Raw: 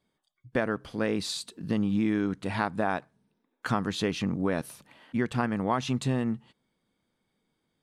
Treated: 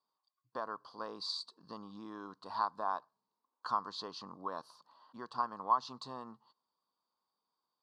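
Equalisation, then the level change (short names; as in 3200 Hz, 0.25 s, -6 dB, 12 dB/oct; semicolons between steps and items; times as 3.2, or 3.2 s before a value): double band-pass 2200 Hz, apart 2.1 oct; high shelf 2500 Hz -8 dB; +6.0 dB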